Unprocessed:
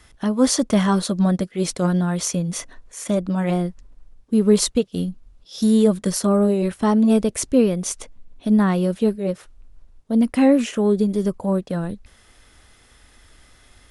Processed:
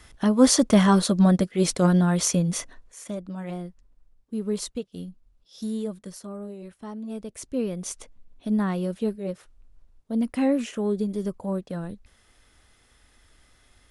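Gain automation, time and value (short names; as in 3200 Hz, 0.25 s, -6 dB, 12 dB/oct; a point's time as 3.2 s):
2.48 s +0.5 dB
3.17 s -12.5 dB
5.6 s -12.5 dB
6.29 s -19.5 dB
7.05 s -19.5 dB
7.84 s -7.5 dB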